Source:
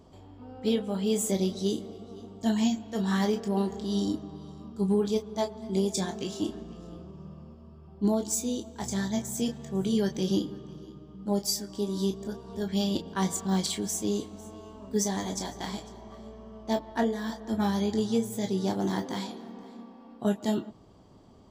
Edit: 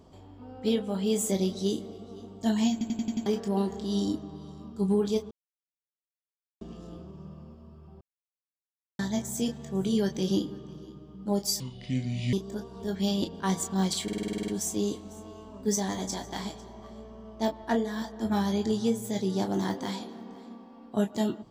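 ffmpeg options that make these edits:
ffmpeg -i in.wav -filter_complex "[0:a]asplit=22[link_01][link_02][link_03][link_04][link_05][link_06][link_07][link_08][link_09][link_10][link_11][link_12][link_13][link_14][link_15][link_16][link_17][link_18][link_19][link_20][link_21][link_22];[link_01]atrim=end=2.812[link_23];[link_02]atrim=start=2.718:end=2.812[link_24];[link_03]atrim=start=2.718:end=2.812[link_25];[link_04]atrim=start=2.718:end=2.812[link_26];[link_05]atrim=start=2.718:end=2.812[link_27];[link_06]atrim=start=2.718:end=2.812[link_28];[link_07]atrim=start=3.258:end=5.31,asetpts=PTS-STARTPTS,afade=type=out:start_time=2.048:duration=0.004:curve=hsin[link_29];[link_08]atrim=start=5.31:end=6.61,asetpts=PTS-STARTPTS,volume=0[link_30];[link_09]atrim=start=6.61:end=8.01,asetpts=PTS-STARTPTS,afade=type=in:duration=0.004:curve=hsin,afade=type=out:start_time=1.396:duration=0.004:curve=hsin[link_31];[link_10]atrim=start=8.01:end=8.99,asetpts=PTS-STARTPTS,volume=0[link_32];[link_11]atrim=start=8.99:end=11.604,asetpts=PTS-STARTPTS,afade=type=in:duration=0.004:curve=hsin[link_33];[link_12]atrim=start=11.6:end=12.06,asetpts=PTS-STARTPTS,asetrate=27783,aresample=44100[link_34];[link_13]atrim=start=12.056:end=13.812[link_35];[link_14]atrim=start=13.758:end=13.812[link_36];[link_15]atrim=start=13.758:end=13.812[link_37];[link_16]atrim=start=13.758:end=13.812[link_38];[link_17]atrim=start=13.758:end=13.812[link_39];[link_18]atrim=start=13.758:end=13.812[link_40];[link_19]atrim=start=13.758:end=13.812[link_41];[link_20]atrim=start=13.758:end=13.812[link_42];[link_21]atrim=start=13.758:end=13.812[link_43];[link_22]atrim=start=13.758[link_44];[link_23][link_24]acrossfade=duration=0.004:curve1=hsin:curve2=hsin[link_45];[link_45][link_25]acrossfade=duration=0.004:curve1=hsin:curve2=hsin[link_46];[link_46][link_26]acrossfade=duration=0.004:curve1=hsin:curve2=hsin[link_47];[link_47][link_27]acrossfade=duration=0.004:curve1=hsin:curve2=hsin[link_48];[link_48][link_28]acrossfade=duration=0.004:curve1=hsin:curve2=hsin[link_49];[link_29][link_30][link_31][link_32][link_33]concat=n=5:v=0:a=1[link_50];[link_49][link_50]acrossfade=duration=0.004:curve1=hsin:curve2=hsin[link_51];[link_51][link_34]acrossfade=duration=0.004:curve1=hsin:curve2=hsin[link_52];[link_52][link_35]acrossfade=duration=0.004:curve1=hsin:curve2=hsin[link_53];[link_53][link_36]acrossfade=duration=0.004:curve1=hsin:curve2=hsin[link_54];[link_54][link_37]acrossfade=duration=0.004:curve1=hsin:curve2=hsin[link_55];[link_55][link_38]acrossfade=duration=0.004:curve1=hsin:curve2=hsin[link_56];[link_56][link_39]acrossfade=duration=0.004:curve1=hsin:curve2=hsin[link_57];[link_57][link_40]acrossfade=duration=0.004:curve1=hsin:curve2=hsin[link_58];[link_58][link_41]acrossfade=duration=0.004:curve1=hsin:curve2=hsin[link_59];[link_59][link_42]acrossfade=duration=0.004:curve1=hsin:curve2=hsin[link_60];[link_60][link_43]acrossfade=duration=0.004:curve1=hsin:curve2=hsin[link_61];[link_61][link_44]acrossfade=duration=0.004:curve1=hsin:curve2=hsin" out.wav

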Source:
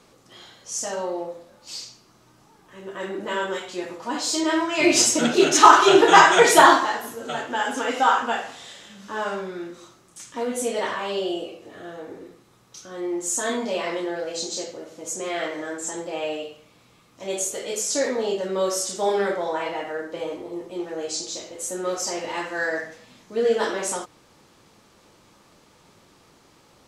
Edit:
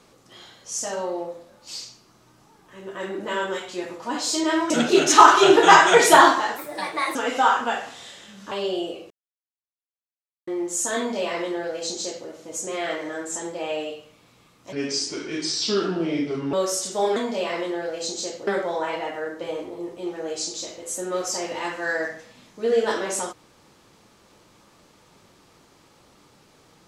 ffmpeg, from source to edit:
ffmpeg -i in.wav -filter_complex "[0:a]asplit=11[link_01][link_02][link_03][link_04][link_05][link_06][link_07][link_08][link_09][link_10][link_11];[link_01]atrim=end=4.702[link_12];[link_02]atrim=start=5.148:end=7.034[link_13];[link_03]atrim=start=7.03:end=7.77,asetpts=PTS-STARTPTS,asetrate=56889,aresample=44100[link_14];[link_04]atrim=start=7.766:end=9.132[link_15];[link_05]atrim=start=11.038:end=11.63,asetpts=PTS-STARTPTS,afade=type=out:start_time=0.588:duration=0.004:curve=hsin[link_16];[link_06]atrim=start=11.63:end=13,asetpts=PTS-STARTPTS,volume=0[link_17];[link_07]atrim=start=13:end=17.254,asetpts=PTS-STARTPTS,afade=type=in:duration=0.004:curve=hsin[link_18];[link_08]atrim=start=17.25:end=18.57,asetpts=PTS-STARTPTS,asetrate=32193,aresample=44100,atrim=end_sample=79742,asetpts=PTS-STARTPTS[link_19];[link_09]atrim=start=18.566:end=19.202[link_20];[link_10]atrim=start=13.498:end=14.812[link_21];[link_11]atrim=start=19.198[link_22];[link_12][link_13]acrossfade=duration=0.004:curve1=hsin:curve2=hsin[link_23];[link_23][link_14]acrossfade=duration=0.004:curve1=hsin:curve2=hsin[link_24];[link_24][link_15]acrossfade=duration=0.004:curve1=hsin:curve2=hsin[link_25];[link_16][link_17][link_18]concat=n=3:v=0:a=1[link_26];[link_25][link_26]acrossfade=duration=0.004:curve1=hsin:curve2=hsin[link_27];[link_27][link_19]acrossfade=duration=0.004:curve1=hsin:curve2=hsin[link_28];[link_28][link_20]acrossfade=duration=0.004:curve1=hsin:curve2=hsin[link_29];[link_29][link_21]acrossfade=duration=0.004:curve1=hsin:curve2=hsin[link_30];[link_30][link_22]acrossfade=duration=0.004:curve1=hsin:curve2=hsin" out.wav

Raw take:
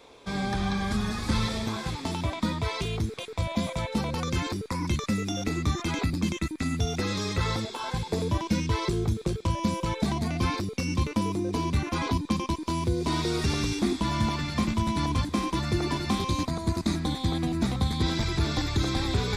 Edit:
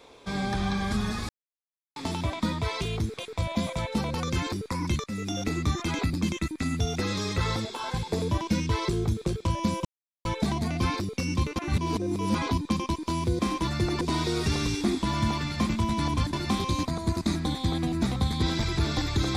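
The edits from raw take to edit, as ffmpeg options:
ffmpeg -i in.wav -filter_complex "[0:a]asplit=10[link_01][link_02][link_03][link_04][link_05][link_06][link_07][link_08][link_09][link_10];[link_01]atrim=end=1.29,asetpts=PTS-STARTPTS,afade=type=out:start_time=1.286:duration=0.004:curve=hsin[link_11];[link_02]atrim=start=1.29:end=1.96,asetpts=PTS-STARTPTS,volume=0[link_12];[link_03]atrim=start=1.96:end=5.04,asetpts=PTS-STARTPTS,afade=type=in:duration=0.004:curve=hsin,afade=type=out:start_time=3.076:duration=0.004:curve=hsin:silence=0.158489[link_13];[link_04]atrim=start=5.04:end=9.85,asetpts=PTS-STARTPTS,afade=type=in:duration=0.37:curve=qsin:silence=0.158489,afade=type=out:start_time=4.806:duration=0.004:curve=hsin,apad=pad_dur=0.4[link_14];[link_05]atrim=start=9.85:end=11.162,asetpts=PTS-STARTPTS,afade=type=in:duration=0.004:curve=hsin[link_15];[link_06]atrim=start=11.158:end=11.952,asetpts=PTS-STARTPTS,areverse[link_16];[link_07]atrim=start=11.948:end=12.992[link_17];[link_08]atrim=start=15.308:end=15.932[link_18];[link_09]atrim=start=12.988:end=15.312[link_19];[link_10]atrim=start=15.928[link_20];[link_11][link_12][link_13][link_14][link_15]concat=n=5:v=0:a=1[link_21];[link_21][link_16]acrossfade=duration=0.004:curve1=hsin:curve2=hsin[link_22];[link_22][link_17]acrossfade=duration=0.004:curve1=hsin:curve2=hsin[link_23];[link_23][link_18]acrossfade=duration=0.004:curve1=hsin:curve2=hsin[link_24];[link_24][link_19]acrossfade=duration=0.004:curve1=hsin:curve2=hsin[link_25];[link_25][link_20]acrossfade=duration=0.004:curve1=hsin:curve2=hsin" out.wav

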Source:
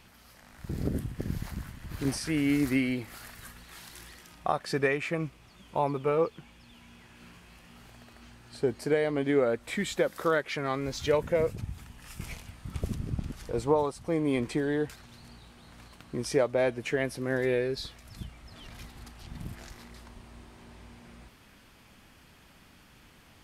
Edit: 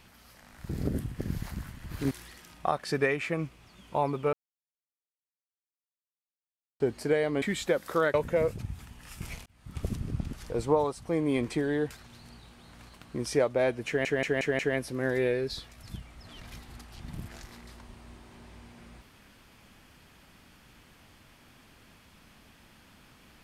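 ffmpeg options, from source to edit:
ffmpeg -i in.wav -filter_complex "[0:a]asplit=11[link_01][link_02][link_03][link_04][link_05][link_06][link_07][link_08][link_09][link_10][link_11];[link_01]atrim=end=2.112[link_12];[link_02]atrim=start=3.918:end=6.14,asetpts=PTS-STARTPTS,afade=type=out:start_time=2.218:duration=0.004:curve=hsin[link_13];[link_03]atrim=start=6.14:end=8.61,asetpts=PTS-STARTPTS,volume=0[link_14];[link_04]atrim=start=8.61:end=9.232,asetpts=PTS-STARTPTS,afade=type=in:duration=0.004:curve=hsin[link_15];[link_05]atrim=start=9.718:end=10.442[link_16];[link_06]atrim=start=11.128:end=12.45,asetpts=PTS-STARTPTS,afade=type=out:start_time=1.318:duration=0.004:curve=hsin[link_17];[link_07]atrim=start=12.45:end=17.042,asetpts=PTS-STARTPTS,afade=type=in:duration=0.4[link_18];[link_08]atrim=start=16.858:end=17.042[link_19];[link_09]atrim=start=16.858:end=17.042[link_20];[link_10]atrim=start=16.858:end=17.042[link_21];[link_11]atrim=start=16.858[link_22];[link_13][link_14][link_15]concat=n=3:v=0:a=1[link_23];[link_12][link_23]acrossfade=duration=0.004:curve1=hsin:curve2=hsin[link_24];[link_24][link_16]acrossfade=duration=0.004:curve1=hsin:curve2=hsin[link_25];[link_17][link_18]concat=n=2:v=0:a=1[link_26];[link_25][link_26]acrossfade=duration=0.004:curve1=hsin:curve2=hsin[link_27];[link_27][link_19]acrossfade=duration=0.004:curve1=hsin:curve2=hsin[link_28];[link_28][link_20]acrossfade=duration=0.004:curve1=hsin:curve2=hsin[link_29];[link_29][link_21]acrossfade=duration=0.004:curve1=hsin:curve2=hsin[link_30];[link_30][link_22]acrossfade=duration=0.004:curve1=hsin:curve2=hsin" out.wav

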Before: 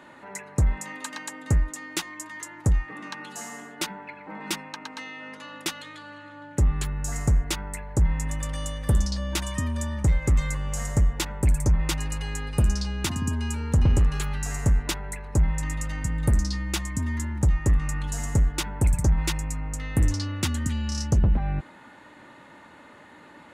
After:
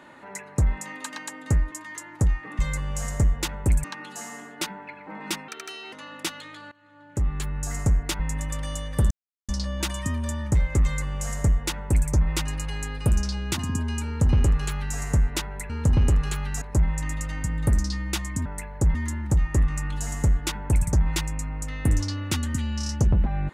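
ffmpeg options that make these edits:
ffmpeg -i in.wav -filter_complex "[0:a]asplit=13[link_01][link_02][link_03][link_04][link_05][link_06][link_07][link_08][link_09][link_10][link_11][link_12][link_13];[link_01]atrim=end=1.722[link_14];[link_02]atrim=start=2.168:end=3.042[link_15];[link_03]atrim=start=10.358:end=11.612[link_16];[link_04]atrim=start=3.038:end=4.684[link_17];[link_05]atrim=start=4.68:end=5.34,asetpts=PTS-STARTPTS,asetrate=65268,aresample=44100,atrim=end_sample=19666,asetpts=PTS-STARTPTS[link_18];[link_06]atrim=start=5.336:end=6.13,asetpts=PTS-STARTPTS,afade=type=out:start_time=0.79:duration=0.004:curve=hsin:silence=0.0891251[link_19];[link_07]atrim=start=6.13:end=7.612,asetpts=PTS-STARTPTS,afade=type=in:duration=0.83:silence=0.0891251[link_20];[link_08]atrim=start=8.098:end=9.01,asetpts=PTS-STARTPTS,afade=type=out:start_time=0.908:duration=0.004:curve=hsin,apad=pad_dur=0.38[link_21];[link_09]atrim=start=9.01:end=15.222,asetpts=PTS-STARTPTS,afade=type=in:duration=0.004:curve=hsin[link_22];[link_10]atrim=start=13.578:end=14.502[link_23];[link_11]atrim=start=15.218:end=17.062[link_24];[link_12]atrim=start=7.608:end=8.102[link_25];[link_13]atrim=start=17.058[link_26];[link_14][link_15]acrossfade=duration=0.004:curve1=hsin:curve2=hsin[link_27];[link_27][link_16]acrossfade=duration=0.004:curve1=hsin:curve2=hsin[link_28];[link_28][link_17]acrossfade=duration=0.004:curve1=hsin:curve2=hsin[link_29];[link_29][link_18]acrossfade=duration=0.004:curve1=hsin:curve2=hsin[link_30];[link_19][link_20]concat=n=2:v=0:a=1[link_31];[link_30][link_31]acrossfade=duration=0.004:curve1=hsin:curve2=hsin[link_32];[link_21][link_22]concat=n=2:v=0:a=1[link_33];[link_32][link_33]acrossfade=duration=0.004:curve1=hsin:curve2=hsin[link_34];[link_34][link_23]acrossfade=duration=0.004:curve1=hsin:curve2=hsin[link_35];[link_35][link_24]acrossfade=duration=0.004:curve1=hsin:curve2=hsin[link_36];[link_36][link_25]acrossfade=duration=0.004:curve1=hsin:curve2=hsin[link_37];[link_37][link_26]acrossfade=duration=0.004:curve1=hsin:curve2=hsin" out.wav

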